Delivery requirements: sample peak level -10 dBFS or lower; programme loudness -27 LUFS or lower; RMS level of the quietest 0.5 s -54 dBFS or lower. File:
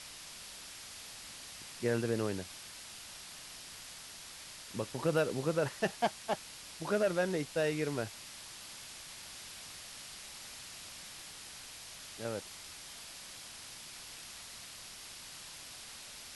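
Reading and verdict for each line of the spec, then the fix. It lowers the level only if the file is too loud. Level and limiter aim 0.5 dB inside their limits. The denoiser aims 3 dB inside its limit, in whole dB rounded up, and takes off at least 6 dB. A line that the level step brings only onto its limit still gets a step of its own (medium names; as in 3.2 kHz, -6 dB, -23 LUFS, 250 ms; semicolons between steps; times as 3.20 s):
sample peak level -18.0 dBFS: pass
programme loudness -39.0 LUFS: pass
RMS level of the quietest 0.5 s -49 dBFS: fail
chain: noise reduction 8 dB, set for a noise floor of -49 dBFS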